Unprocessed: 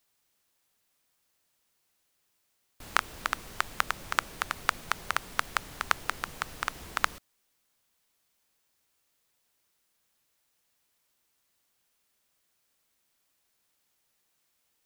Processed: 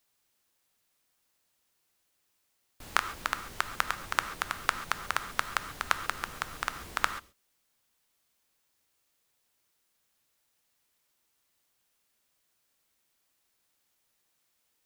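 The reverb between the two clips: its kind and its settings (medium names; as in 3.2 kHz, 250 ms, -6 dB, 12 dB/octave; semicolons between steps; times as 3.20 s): gated-style reverb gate 160 ms flat, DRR 10 dB; trim -1 dB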